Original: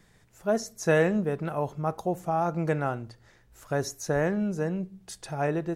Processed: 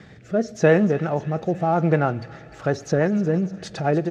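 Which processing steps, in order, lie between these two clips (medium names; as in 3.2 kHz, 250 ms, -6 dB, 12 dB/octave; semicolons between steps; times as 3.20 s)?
companding laws mixed up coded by mu; high-pass 87 Hz 12 dB/octave; band-stop 1 kHz, Q 8.9; in parallel at +1 dB: compression 6:1, threshold -35 dBFS, peak gain reduction 16.5 dB; on the sum: vibrato 7.4 Hz 21 cents; rotary cabinet horn 0.65 Hz, later 7 Hz, at 3.46 s; vibrato 2.2 Hz 6.9 cents; tempo 1.4×; distance through air 170 m; feedback echo behind a high-pass 299 ms, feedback 70%, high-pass 2.2 kHz, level -15 dB; on a send at -22 dB: reverberation RT60 3.8 s, pre-delay 65 ms; on the sum: trim +6 dB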